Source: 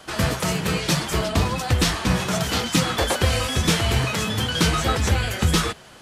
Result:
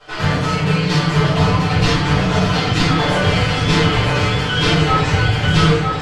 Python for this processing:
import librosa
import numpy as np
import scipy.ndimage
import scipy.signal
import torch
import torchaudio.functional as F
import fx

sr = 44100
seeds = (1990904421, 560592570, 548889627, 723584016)

p1 = scipy.signal.sosfilt(scipy.signal.butter(2, 4600.0, 'lowpass', fs=sr, output='sos'), x)
p2 = p1 + 0.75 * np.pad(p1, (int(6.8 * sr / 1000.0), 0))[:len(p1)]
p3 = p2 + fx.echo_single(p2, sr, ms=951, db=-4.5, dry=0)
p4 = fx.room_shoebox(p3, sr, seeds[0], volume_m3=200.0, walls='mixed', distance_m=4.5)
y = p4 * librosa.db_to_amplitude(-9.5)